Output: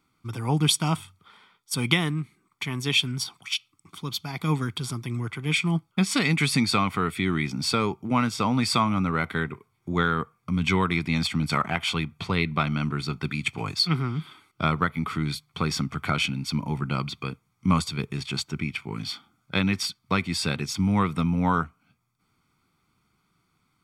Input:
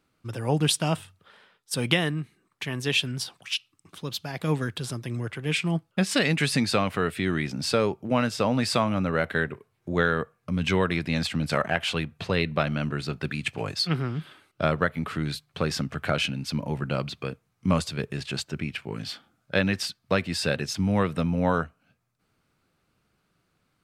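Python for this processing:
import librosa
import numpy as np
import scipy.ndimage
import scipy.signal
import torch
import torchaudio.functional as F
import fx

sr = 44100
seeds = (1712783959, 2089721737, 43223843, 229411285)

y = fx.low_shelf(x, sr, hz=110.0, db=-6.0)
y = y + 0.71 * np.pad(y, (int(0.9 * sr / 1000.0), 0))[:len(y)]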